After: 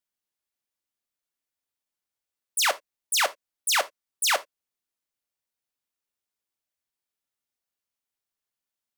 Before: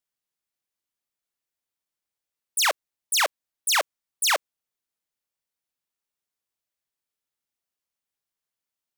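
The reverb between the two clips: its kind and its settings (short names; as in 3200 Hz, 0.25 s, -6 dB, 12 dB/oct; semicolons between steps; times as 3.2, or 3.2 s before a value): non-linear reverb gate 0.1 s falling, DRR 11.5 dB; gain -1.5 dB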